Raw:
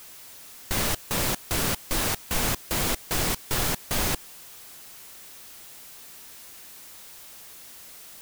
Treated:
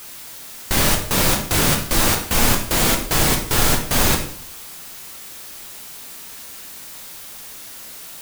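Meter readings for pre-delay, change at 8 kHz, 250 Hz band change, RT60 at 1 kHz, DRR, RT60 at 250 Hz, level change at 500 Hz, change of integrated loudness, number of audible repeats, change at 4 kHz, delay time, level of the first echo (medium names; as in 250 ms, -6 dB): 14 ms, +8.5 dB, +10.0 dB, 0.55 s, 3.0 dB, 0.70 s, +9.0 dB, +9.0 dB, no echo, +8.5 dB, no echo, no echo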